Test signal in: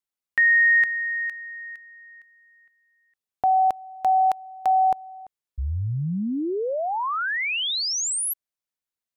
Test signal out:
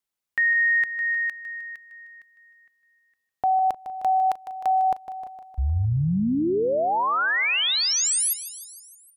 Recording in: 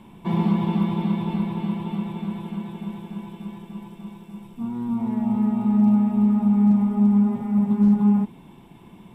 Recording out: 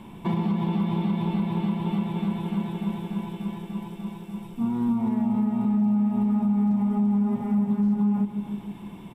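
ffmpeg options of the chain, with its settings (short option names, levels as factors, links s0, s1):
-af "aecho=1:1:154|308|462|616|770|924:0.2|0.12|0.0718|0.0431|0.0259|0.0155,alimiter=limit=0.0944:level=0:latency=1:release=272,volume=1.5"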